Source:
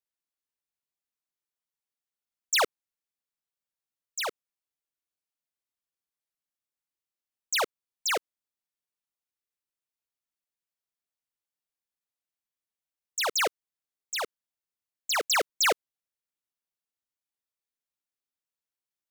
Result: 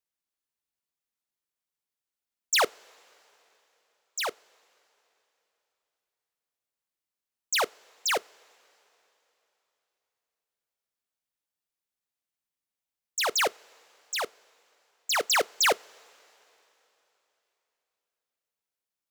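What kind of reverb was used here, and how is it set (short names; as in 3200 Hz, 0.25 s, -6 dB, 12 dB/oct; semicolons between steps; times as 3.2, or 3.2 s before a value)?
two-slope reverb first 0.23 s, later 3.5 s, from -18 dB, DRR 19.5 dB; gain +1 dB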